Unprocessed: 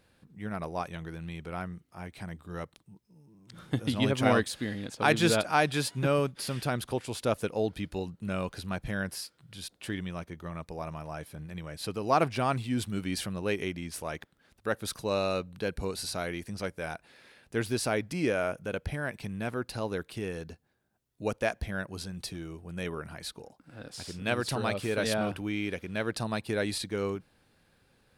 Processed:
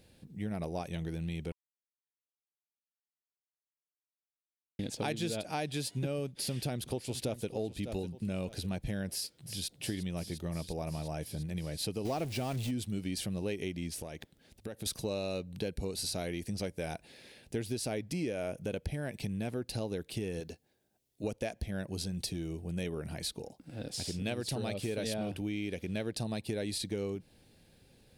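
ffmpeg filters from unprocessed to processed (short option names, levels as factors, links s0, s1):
-filter_complex "[0:a]asplit=2[s0][s1];[s1]afade=t=in:st=6.26:d=0.01,afade=t=out:st=7.46:d=0.01,aecho=0:1:600|1200|1800:0.223872|0.055968|0.013992[s2];[s0][s2]amix=inputs=2:normalize=0,asplit=2[s3][s4];[s4]afade=t=in:st=9.1:d=0.01,afade=t=out:st=9.75:d=0.01,aecho=0:1:350|700|1050|1400|1750|2100|2450|2800|3150|3500|3850|4200:0.316228|0.252982|0.202386|0.161909|0.129527|0.103622|0.0828972|0.0663178|0.0530542|0.0424434|0.0339547|0.0271638[s5];[s3][s5]amix=inputs=2:normalize=0,asettb=1/sr,asplit=3[s6][s7][s8];[s6]atrim=end=12.054[s9];[s7]atrim=start=12.05:end=12.71,asetpts=PTS-STARTPTS,afade=t=in:d=0.004:c=qsin,afade=t=out:st=0.656:d=0.004:c=qsin,aeval=exprs='val(0)+0.5*0.0251*sgn(val(0))':c=same[s10];[s8]atrim=start=12.706[s11];[s9][s10]acrossfade=d=0.004:c1=hsin:c2=qsin[s12];[s12][s11]acrossfade=d=0.004:c1=qsin:c2=hsin,asettb=1/sr,asplit=3[s13][s14][s15];[s13]atrim=end=13.904[s16];[s14]atrim=start=13.9:end=14.86,asetpts=PTS-STARTPTS,afade=t=in:d=0.004:c=qsin,afade=t=out:st=0.956:d=0.004:c=qsin,acompressor=threshold=0.01:ratio=12:attack=3.2:release=140:knee=1:detection=peak[s17];[s15]atrim=start=14.856[s18];[s16][s17]acrossfade=d=0.004:c1=hsin:c2=qsin[s19];[s19][s18]acrossfade=d=0.004:c1=qsin:c2=hsin,asettb=1/sr,asplit=3[s20][s21][s22];[s20]atrim=end=20.404[s23];[s21]atrim=start=20.4:end=21.24,asetpts=PTS-STARTPTS,afade=t=in:d=0.004:c=qsin,afade=t=out:st=0.836:d=0.004:c=qsin,bass=f=250:g=-9,treble=f=4000:g=0[s24];[s22]atrim=start=21.236[s25];[s23][s24]acrossfade=d=0.004:c1=hsin:c2=qsin[s26];[s26][s25]acrossfade=d=0.004:c1=qsin:c2=hsin,asplit=3[s27][s28][s29];[s27]atrim=end=1.52,asetpts=PTS-STARTPTS,afade=t=out:st=1.516:d=0.004:c=hsin[s30];[s28]atrim=start=1.52:end=4.79,asetpts=PTS-STARTPTS,volume=0[s31];[s29]atrim=start=4.79,asetpts=PTS-STARTPTS,afade=t=in:d=0.004:c=hsin[s32];[s30][s31][s32]concat=n=3:v=0:a=1,equalizer=f=1300:w=1.3:g=-14,bandreject=f=1000:w=18,acompressor=threshold=0.0126:ratio=6,volume=1.88"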